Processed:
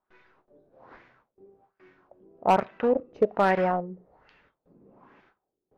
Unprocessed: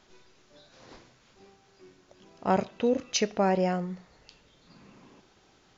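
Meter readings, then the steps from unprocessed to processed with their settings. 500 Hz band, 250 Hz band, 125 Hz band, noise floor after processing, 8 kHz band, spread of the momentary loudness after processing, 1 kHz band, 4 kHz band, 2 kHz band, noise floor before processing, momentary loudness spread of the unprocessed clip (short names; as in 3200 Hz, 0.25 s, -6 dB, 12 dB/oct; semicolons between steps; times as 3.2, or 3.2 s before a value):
+3.0 dB, -1.5 dB, -2.5 dB, -85 dBFS, n/a, 8 LU, +5.5 dB, -9.0 dB, +5.0 dB, -62 dBFS, 11 LU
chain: gate with hold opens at -50 dBFS; low shelf 390 Hz -7 dB; in parallel at -6 dB: bit-crush 5-bit; on the sum: LFO low-pass sine 1.2 Hz 390–2000 Hz; hard clip -12.5 dBFS, distortion -18 dB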